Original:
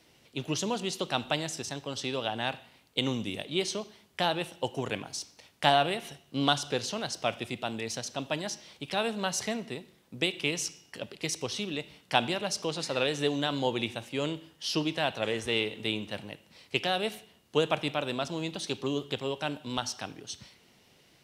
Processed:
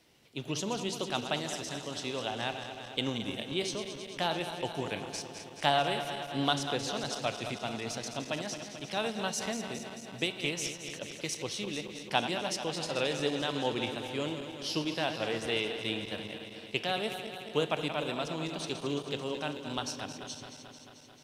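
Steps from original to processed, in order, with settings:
feedback delay that plays each chunk backwards 110 ms, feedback 83%, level −9.5 dB
level −3.5 dB

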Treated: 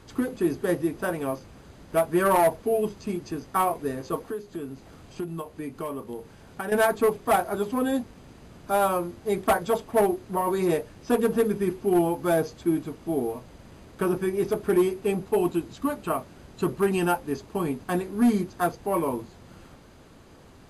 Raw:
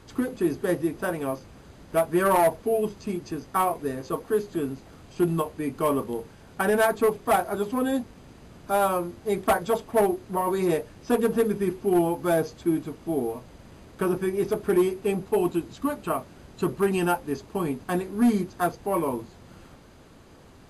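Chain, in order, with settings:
0:04.27–0:06.72: downward compressor 3 to 1, threshold −33 dBFS, peak gain reduction 11.5 dB

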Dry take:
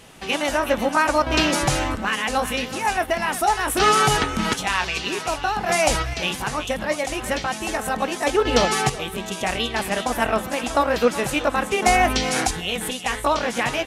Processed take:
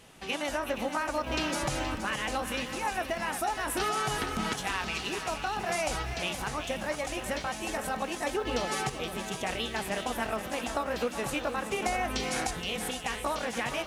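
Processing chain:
downward compressor, threshold −19 dBFS, peak gain reduction 7.5 dB
feedback echo at a low word length 472 ms, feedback 55%, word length 8 bits, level −10 dB
level −8 dB

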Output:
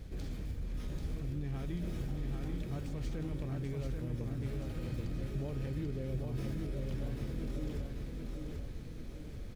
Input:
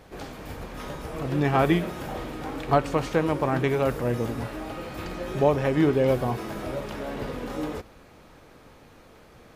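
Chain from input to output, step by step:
running median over 3 samples
guitar amp tone stack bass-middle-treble 10-0-1
notch filter 2,800 Hz, Q 25
reversed playback
downward compressor, threshold −51 dBFS, peak gain reduction 15.5 dB
reversed playback
brickwall limiter −50 dBFS, peak gain reduction 8 dB
on a send: repeating echo 788 ms, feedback 49%, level −3.5 dB
on the sum: level +18 dB

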